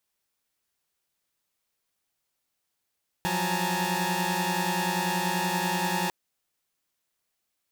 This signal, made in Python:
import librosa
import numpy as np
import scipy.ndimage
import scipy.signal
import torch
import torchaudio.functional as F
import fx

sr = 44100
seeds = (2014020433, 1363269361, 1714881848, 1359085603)

y = fx.chord(sr, length_s=2.85, notes=(53, 54, 80, 81, 82), wave='saw', level_db=-29.5)